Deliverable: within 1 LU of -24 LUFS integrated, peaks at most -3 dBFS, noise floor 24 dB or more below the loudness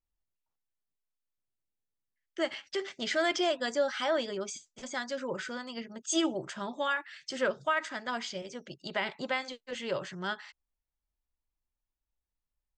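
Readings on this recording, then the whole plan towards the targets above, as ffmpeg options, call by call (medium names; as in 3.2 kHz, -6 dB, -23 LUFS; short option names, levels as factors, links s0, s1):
loudness -33.5 LUFS; peak level -17.0 dBFS; loudness target -24.0 LUFS
-> -af "volume=2.99"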